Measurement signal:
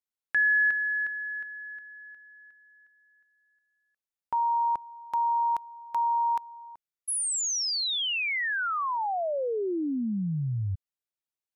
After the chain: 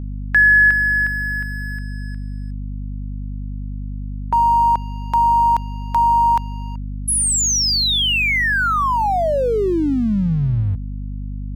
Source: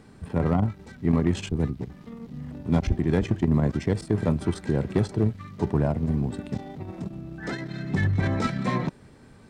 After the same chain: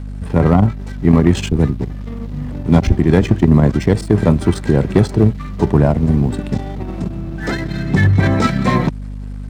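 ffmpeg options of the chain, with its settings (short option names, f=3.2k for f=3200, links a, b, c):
-af "acontrast=25,aeval=exprs='sgn(val(0))*max(abs(val(0))-0.00473,0)':c=same,aeval=exprs='val(0)+0.0251*(sin(2*PI*50*n/s)+sin(2*PI*2*50*n/s)/2+sin(2*PI*3*50*n/s)/3+sin(2*PI*4*50*n/s)/4+sin(2*PI*5*50*n/s)/5)':c=same,volume=6.5dB"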